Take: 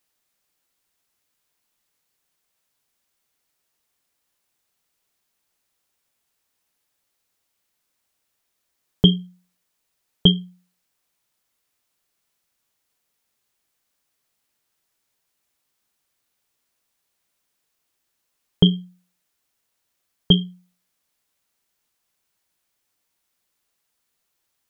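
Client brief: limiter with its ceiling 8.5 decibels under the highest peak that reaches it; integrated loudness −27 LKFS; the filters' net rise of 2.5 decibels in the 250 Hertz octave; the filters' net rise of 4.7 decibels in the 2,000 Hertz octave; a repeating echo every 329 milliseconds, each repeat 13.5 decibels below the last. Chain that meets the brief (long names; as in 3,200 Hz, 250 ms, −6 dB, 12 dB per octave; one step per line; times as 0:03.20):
parametric band 250 Hz +4.5 dB
parametric band 2,000 Hz +6 dB
brickwall limiter −7.5 dBFS
repeating echo 329 ms, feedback 21%, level −13.5 dB
level −2.5 dB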